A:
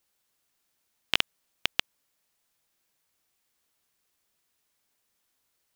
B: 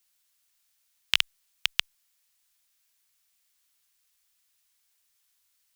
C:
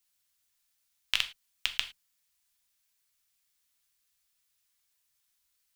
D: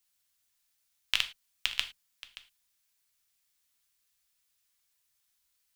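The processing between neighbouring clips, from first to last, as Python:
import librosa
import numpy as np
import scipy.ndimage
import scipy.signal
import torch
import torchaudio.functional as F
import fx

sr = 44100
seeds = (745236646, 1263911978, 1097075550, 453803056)

y1 = fx.tone_stack(x, sr, knobs='10-0-10')
y1 = F.gain(torch.from_numpy(y1), 5.0).numpy()
y2 = fx.octave_divider(y1, sr, octaves=2, level_db=4.0)
y2 = fx.rev_gated(y2, sr, seeds[0], gate_ms=130, shape='falling', drr_db=6.5)
y2 = F.gain(torch.from_numpy(y2), -5.0).numpy()
y3 = y2 + 10.0 ** (-17.0 / 20.0) * np.pad(y2, (int(576 * sr / 1000.0), 0))[:len(y2)]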